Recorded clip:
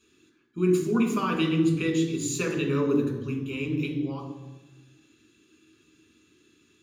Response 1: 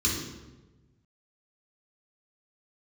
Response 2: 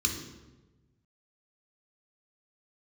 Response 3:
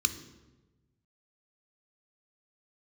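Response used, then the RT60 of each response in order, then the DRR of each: 2; 1.2 s, 1.2 s, 1.2 s; -4.5 dB, 2.5 dB, 10.0 dB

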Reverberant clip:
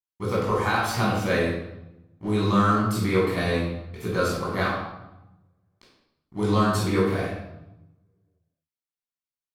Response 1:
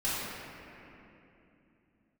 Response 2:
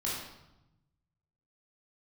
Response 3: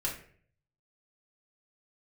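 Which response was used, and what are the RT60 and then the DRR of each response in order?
2; 3.0 s, 0.90 s, 0.50 s; -12.0 dB, -7.0 dB, -5.0 dB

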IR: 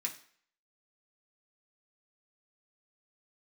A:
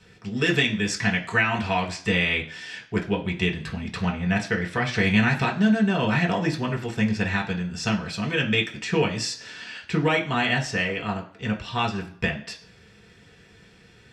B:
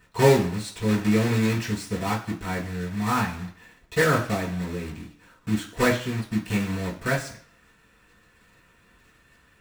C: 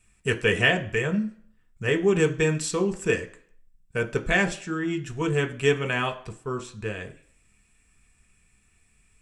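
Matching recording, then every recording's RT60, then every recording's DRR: A; 0.55 s, 0.55 s, 0.55 s; -1.5 dB, -7.0 dB, 4.0 dB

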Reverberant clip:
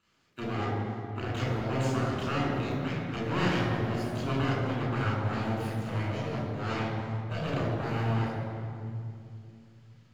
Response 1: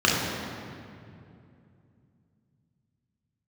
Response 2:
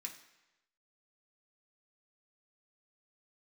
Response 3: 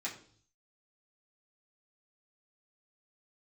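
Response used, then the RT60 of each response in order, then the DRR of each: 1; 2.6 s, 1.0 s, 0.50 s; -5.0 dB, 0.0 dB, -7.0 dB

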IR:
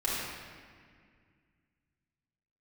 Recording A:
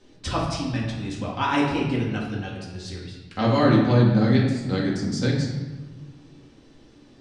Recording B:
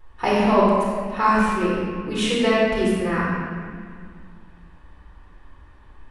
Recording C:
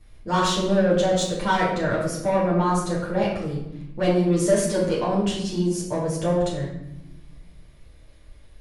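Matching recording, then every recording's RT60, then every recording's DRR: B; 1.3 s, 2.0 s, 0.90 s; -4.5 dB, -7.0 dB, -7.5 dB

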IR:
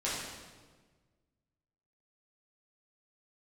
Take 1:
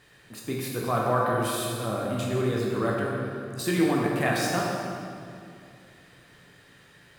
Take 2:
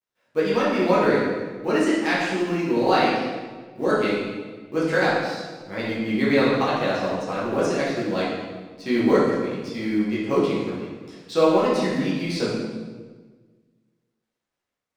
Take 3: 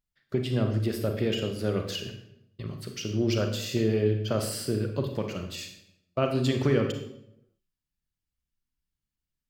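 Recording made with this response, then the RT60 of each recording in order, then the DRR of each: 2; 2.5 s, 1.4 s, 0.80 s; -3.0 dB, -9.0 dB, 4.5 dB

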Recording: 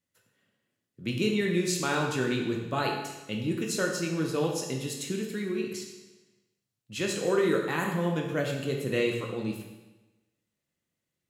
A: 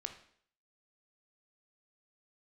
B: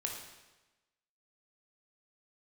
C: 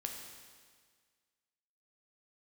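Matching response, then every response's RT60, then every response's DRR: B; 0.60 s, 1.1 s, 1.7 s; 6.0 dB, 0.5 dB, 2.0 dB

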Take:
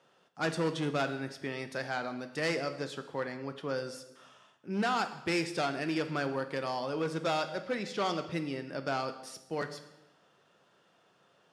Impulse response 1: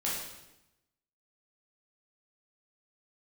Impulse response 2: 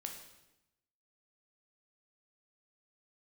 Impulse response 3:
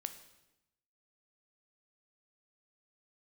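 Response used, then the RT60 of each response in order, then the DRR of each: 3; 0.90 s, 0.90 s, 0.90 s; -6.5 dB, 2.5 dB, 8.5 dB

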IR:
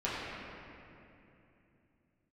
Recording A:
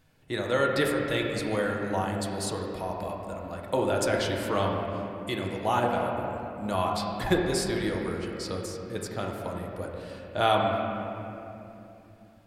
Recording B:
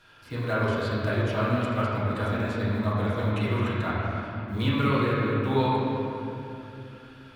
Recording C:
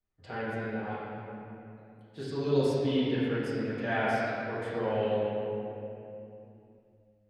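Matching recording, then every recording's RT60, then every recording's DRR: B; 2.9 s, 2.9 s, 2.9 s; -1.0 dB, -10.0 dB, -15.0 dB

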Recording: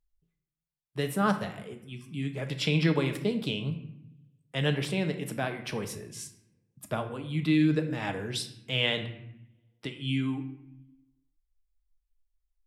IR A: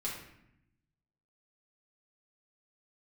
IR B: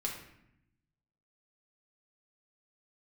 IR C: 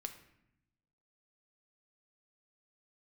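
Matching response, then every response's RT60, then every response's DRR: C; 0.75 s, 0.75 s, 0.80 s; -6.5 dB, -2.0 dB, 5.5 dB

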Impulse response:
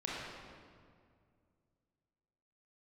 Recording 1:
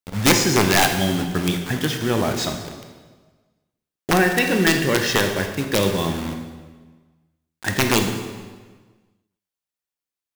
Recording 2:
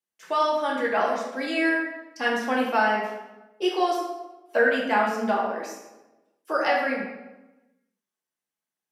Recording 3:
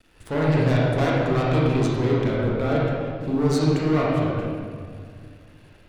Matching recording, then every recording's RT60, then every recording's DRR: 3; 1.4 s, 1.1 s, 2.1 s; 4.5 dB, -3.5 dB, -6.0 dB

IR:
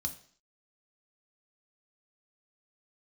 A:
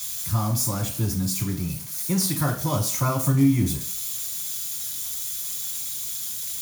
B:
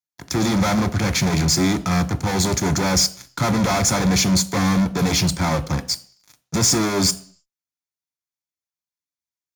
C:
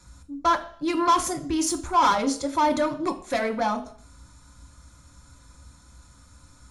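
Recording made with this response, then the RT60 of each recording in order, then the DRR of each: C; 0.50 s, 0.50 s, 0.50 s; -2.5 dB, 9.5 dB, 4.0 dB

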